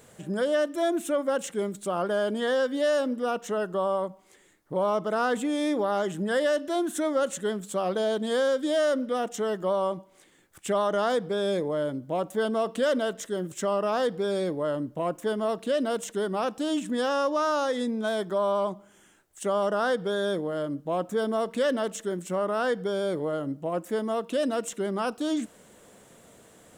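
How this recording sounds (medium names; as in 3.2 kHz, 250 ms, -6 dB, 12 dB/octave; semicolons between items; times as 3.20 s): noise floor -58 dBFS; spectral tilt -4.0 dB/octave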